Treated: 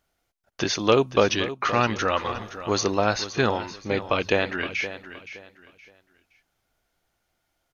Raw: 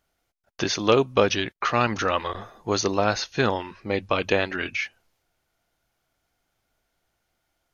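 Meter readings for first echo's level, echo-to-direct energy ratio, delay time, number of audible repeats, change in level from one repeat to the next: −13.0 dB, −12.5 dB, 519 ms, 2, −11.0 dB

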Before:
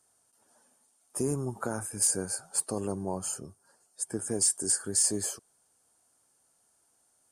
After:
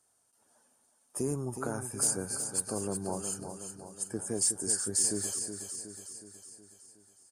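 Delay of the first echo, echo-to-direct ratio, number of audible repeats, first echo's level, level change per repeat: 368 ms, −6.5 dB, 6, −8.0 dB, −5.0 dB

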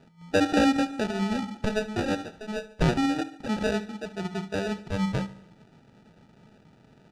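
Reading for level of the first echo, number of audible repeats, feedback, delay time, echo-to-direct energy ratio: −17.5 dB, 4, 56%, 72 ms, −16.0 dB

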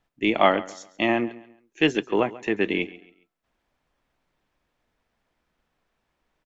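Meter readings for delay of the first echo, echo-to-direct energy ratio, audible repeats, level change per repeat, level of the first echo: 137 ms, −18.0 dB, 2, −9.5 dB, −18.5 dB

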